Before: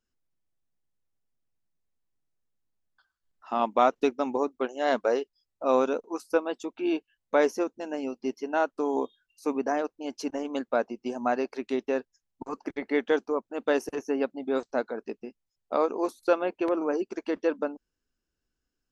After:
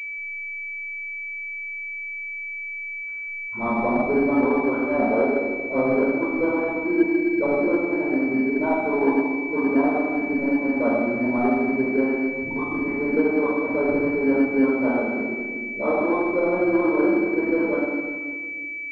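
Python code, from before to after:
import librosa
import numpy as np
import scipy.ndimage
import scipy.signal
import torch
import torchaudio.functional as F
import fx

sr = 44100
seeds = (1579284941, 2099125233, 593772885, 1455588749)

y = fx.peak_eq(x, sr, hz=510.0, db=-9.5, octaves=0.95)
y = fx.dispersion(y, sr, late='highs', ms=107.0, hz=370.0)
y = 10.0 ** (-19.5 / 20.0) * np.tanh(y / 10.0 ** (-19.5 / 20.0))
y = fx.env_lowpass_down(y, sr, base_hz=410.0, full_db=-24.5)
y = fx.room_shoebox(y, sr, seeds[0], volume_m3=2000.0, walls='mixed', distance_m=5.0)
y = fx.pwm(y, sr, carrier_hz=2300.0)
y = y * 10.0 ** (4.5 / 20.0)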